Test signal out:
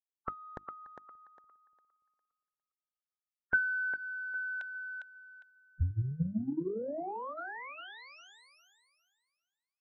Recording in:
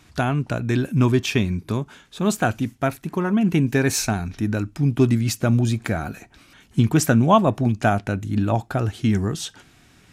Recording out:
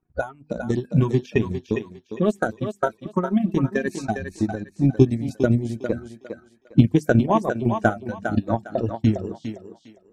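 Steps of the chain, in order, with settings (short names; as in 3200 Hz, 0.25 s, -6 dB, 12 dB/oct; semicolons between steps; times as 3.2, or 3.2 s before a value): bin magnitudes rounded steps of 30 dB; low-pass opened by the level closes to 1000 Hz, open at -17 dBFS; tilt shelf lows +4.5 dB, about 790 Hz; notches 50/100/150/200/250/300/350 Hz; spectral noise reduction 16 dB; transient shaper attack +11 dB, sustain -8 dB; on a send: thinning echo 0.405 s, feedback 27%, high-pass 370 Hz, level -6 dB; on the sum: gain -7.5 dB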